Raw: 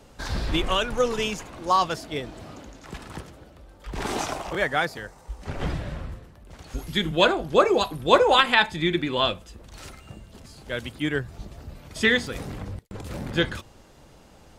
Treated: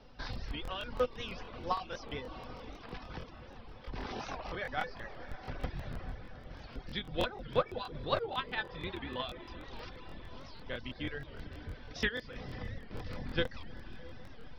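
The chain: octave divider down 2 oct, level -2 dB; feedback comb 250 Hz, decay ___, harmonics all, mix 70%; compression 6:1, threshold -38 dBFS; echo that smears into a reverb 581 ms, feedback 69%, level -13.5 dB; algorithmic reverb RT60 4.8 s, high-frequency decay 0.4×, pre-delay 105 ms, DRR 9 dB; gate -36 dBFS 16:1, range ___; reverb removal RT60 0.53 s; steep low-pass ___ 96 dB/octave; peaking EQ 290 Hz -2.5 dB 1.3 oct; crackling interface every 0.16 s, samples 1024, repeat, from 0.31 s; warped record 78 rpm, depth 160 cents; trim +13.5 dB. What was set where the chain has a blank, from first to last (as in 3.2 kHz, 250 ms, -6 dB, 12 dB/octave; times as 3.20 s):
0.24 s, -11 dB, 5.6 kHz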